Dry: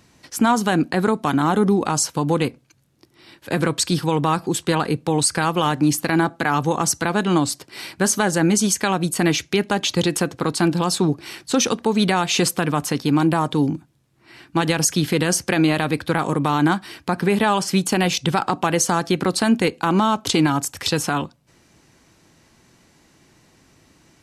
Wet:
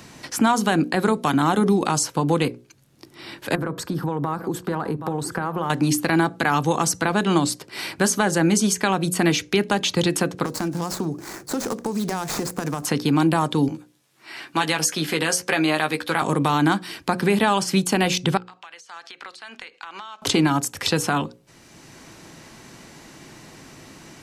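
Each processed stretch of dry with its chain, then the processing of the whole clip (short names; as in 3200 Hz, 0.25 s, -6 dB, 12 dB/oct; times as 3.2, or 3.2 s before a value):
3.55–5.7 band shelf 4800 Hz -15.5 dB 2.6 oct + echo 0.773 s -18.5 dB + compressor 4:1, threshold -23 dBFS
10.45–12.85 median filter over 15 samples + resonant high shelf 4600 Hz +8.5 dB, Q 1.5 + compressor 10:1, threshold -23 dBFS
13.68–16.22 HPF 630 Hz 6 dB/oct + doubler 13 ms -6 dB
18.37–20.22 Bessel high-pass 2400 Hz + compressor 12:1, threshold -36 dBFS + tape spacing loss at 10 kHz 22 dB
whole clip: bell 74 Hz -6.5 dB 0.44 oct; notches 60/120/180/240/300/360/420/480/540 Hz; three-band squash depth 40%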